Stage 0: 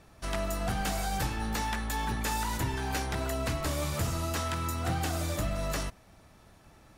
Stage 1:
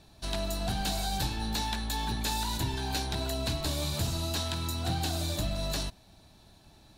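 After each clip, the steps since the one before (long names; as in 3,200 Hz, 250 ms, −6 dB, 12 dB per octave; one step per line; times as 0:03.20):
thirty-one-band graphic EQ 500 Hz −7 dB, 1,250 Hz −10 dB, 2,000 Hz −8 dB, 4,000 Hz +12 dB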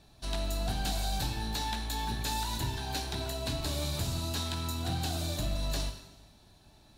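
dense smooth reverb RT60 1.1 s, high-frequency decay 1×, DRR 6.5 dB
level −3 dB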